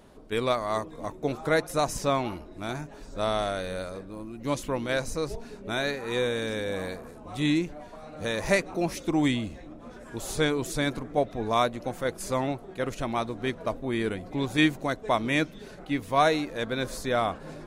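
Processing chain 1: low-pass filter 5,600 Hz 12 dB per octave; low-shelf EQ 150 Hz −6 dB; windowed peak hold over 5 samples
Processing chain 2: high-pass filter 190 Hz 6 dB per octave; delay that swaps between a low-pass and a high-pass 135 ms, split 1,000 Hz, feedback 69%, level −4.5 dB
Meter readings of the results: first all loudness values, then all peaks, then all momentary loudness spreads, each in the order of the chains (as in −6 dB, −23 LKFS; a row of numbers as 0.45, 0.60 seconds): −29.5, −28.5 LKFS; −10.5, −9.0 dBFS; 13, 10 LU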